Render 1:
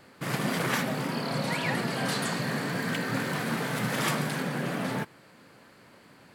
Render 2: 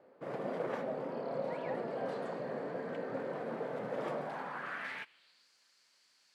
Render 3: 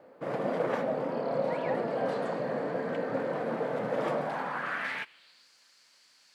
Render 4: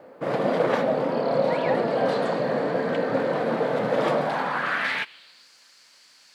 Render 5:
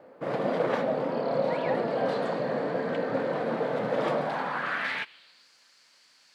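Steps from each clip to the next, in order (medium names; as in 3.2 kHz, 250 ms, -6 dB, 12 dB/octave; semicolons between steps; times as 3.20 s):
band-pass sweep 530 Hz -> 5.6 kHz, 4.13–5.49 s
band-stop 390 Hz, Q 12; trim +7.5 dB
dynamic bell 3.9 kHz, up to +6 dB, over -56 dBFS, Q 1.7; trim +7.5 dB
treble shelf 6.8 kHz -5 dB; trim -4.5 dB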